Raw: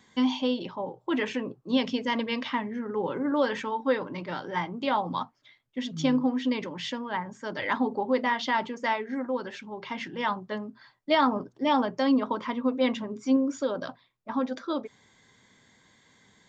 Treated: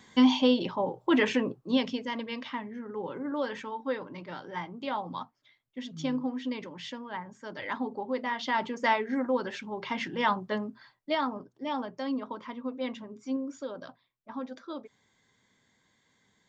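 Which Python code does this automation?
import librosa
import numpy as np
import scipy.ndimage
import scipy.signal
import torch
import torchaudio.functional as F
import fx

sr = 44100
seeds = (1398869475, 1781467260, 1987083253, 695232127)

y = fx.gain(x, sr, db=fx.line((1.42, 4.0), (2.11, -6.5), (8.24, -6.5), (8.83, 2.0), (10.65, 2.0), (11.33, -9.0)))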